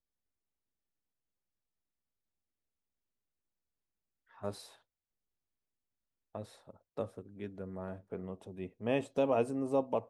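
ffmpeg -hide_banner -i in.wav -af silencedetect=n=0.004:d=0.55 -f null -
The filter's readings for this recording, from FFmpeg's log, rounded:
silence_start: 0.00
silence_end: 4.38 | silence_duration: 4.38
silence_start: 4.71
silence_end: 6.35 | silence_duration: 1.64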